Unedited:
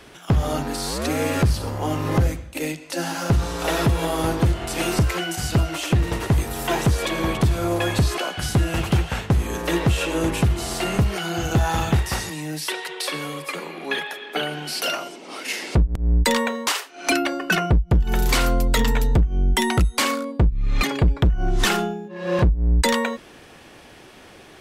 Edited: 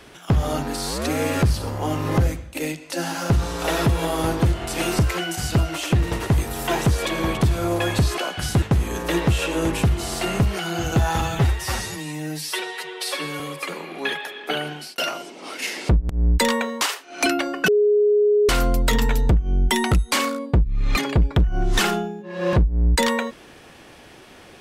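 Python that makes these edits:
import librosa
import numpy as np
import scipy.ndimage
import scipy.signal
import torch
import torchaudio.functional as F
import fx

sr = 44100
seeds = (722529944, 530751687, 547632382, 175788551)

y = fx.edit(x, sr, fx.cut(start_s=8.62, length_s=0.59),
    fx.stretch_span(start_s=11.8, length_s=1.46, factor=1.5),
    fx.fade_out_span(start_s=14.54, length_s=0.3),
    fx.bleep(start_s=17.54, length_s=0.81, hz=416.0, db=-13.5), tone=tone)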